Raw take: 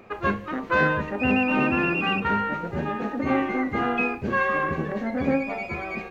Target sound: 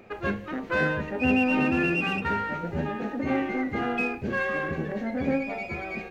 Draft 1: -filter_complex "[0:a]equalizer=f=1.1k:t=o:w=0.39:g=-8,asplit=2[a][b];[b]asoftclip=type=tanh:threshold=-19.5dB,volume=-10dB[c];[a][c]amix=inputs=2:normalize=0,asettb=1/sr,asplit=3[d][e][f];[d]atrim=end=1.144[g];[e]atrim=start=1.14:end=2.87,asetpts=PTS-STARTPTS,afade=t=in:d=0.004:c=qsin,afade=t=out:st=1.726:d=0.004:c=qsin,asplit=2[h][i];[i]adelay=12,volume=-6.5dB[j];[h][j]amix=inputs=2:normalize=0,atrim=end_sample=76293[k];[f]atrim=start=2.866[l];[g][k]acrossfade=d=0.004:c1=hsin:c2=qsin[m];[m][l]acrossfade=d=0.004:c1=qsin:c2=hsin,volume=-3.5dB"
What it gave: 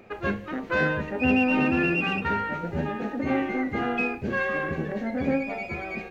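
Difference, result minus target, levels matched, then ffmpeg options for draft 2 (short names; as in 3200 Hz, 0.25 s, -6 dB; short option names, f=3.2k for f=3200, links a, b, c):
soft clip: distortion -9 dB
-filter_complex "[0:a]equalizer=f=1.1k:t=o:w=0.39:g=-8,asplit=2[a][b];[b]asoftclip=type=tanh:threshold=-30dB,volume=-10dB[c];[a][c]amix=inputs=2:normalize=0,asettb=1/sr,asplit=3[d][e][f];[d]atrim=end=1.144[g];[e]atrim=start=1.14:end=2.87,asetpts=PTS-STARTPTS,afade=t=in:d=0.004:c=qsin,afade=t=out:st=1.726:d=0.004:c=qsin,asplit=2[h][i];[i]adelay=12,volume=-6.5dB[j];[h][j]amix=inputs=2:normalize=0,atrim=end_sample=76293[k];[f]atrim=start=2.866[l];[g][k]acrossfade=d=0.004:c1=hsin:c2=qsin[m];[m][l]acrossfade=d=0.004:c1=qsin:c2=hsin,volume=-3.5dB"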